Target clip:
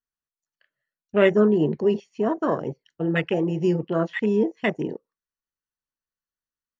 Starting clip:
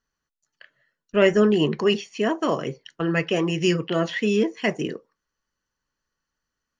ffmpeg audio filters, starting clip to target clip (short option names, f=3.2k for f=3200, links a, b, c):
-af "afwtdn=0.0562"